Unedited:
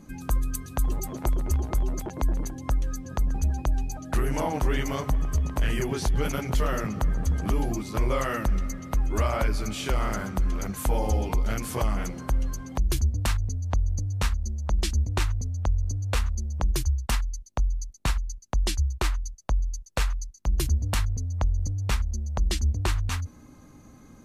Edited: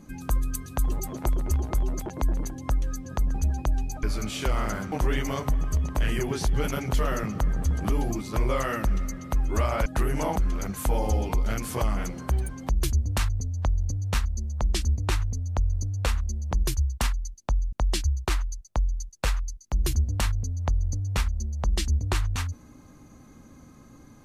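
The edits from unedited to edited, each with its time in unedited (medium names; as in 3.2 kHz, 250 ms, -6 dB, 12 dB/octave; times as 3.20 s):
4.03–4.53 s: swap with 9.47–10.36 s
12.31–12.58 s: speed 146%
17.81–18.46 s: delete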